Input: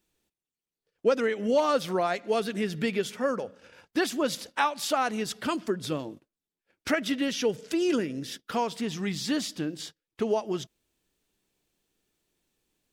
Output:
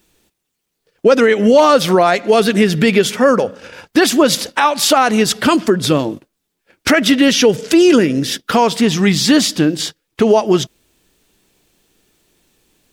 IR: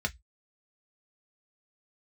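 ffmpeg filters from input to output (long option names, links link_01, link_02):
-af "alimiter=level_in=19dB:limit=-1dB:release=50:level=0:latency=1,volume=-1dB"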